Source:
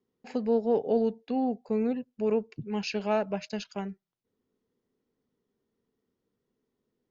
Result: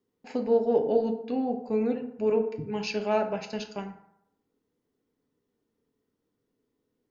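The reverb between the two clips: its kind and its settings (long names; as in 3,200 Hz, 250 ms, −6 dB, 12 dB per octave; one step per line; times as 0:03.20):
feedback delay network reverb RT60 0.79 s, low-frequency decay 0.95×, high-frequency decay 0.5×, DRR 4 dB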